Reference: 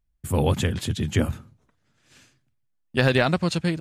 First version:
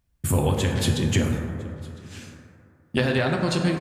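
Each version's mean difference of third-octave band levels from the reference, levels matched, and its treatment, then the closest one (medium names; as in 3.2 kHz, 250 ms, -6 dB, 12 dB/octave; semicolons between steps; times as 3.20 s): 7.0 dB: high-pass 45 Hz; compression 6:1, threshold -30 dBFS, peak gain reduction 15 dB; on a send: delay 1006 ms -24 dB; on the sum: plate-style reverb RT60 2.4 s, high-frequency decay 0.3×, DRR 1.5 dB; trim +8.5 dB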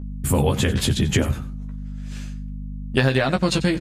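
4.5 dB: hum 50 Hz, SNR 15 dB; doubling 15 ms -5 dB; compression 6:1, threshold -25 dBFS, peak gain reduction 12.5 dB; delay 93 ms -16.5 dB; trim +9 dB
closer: second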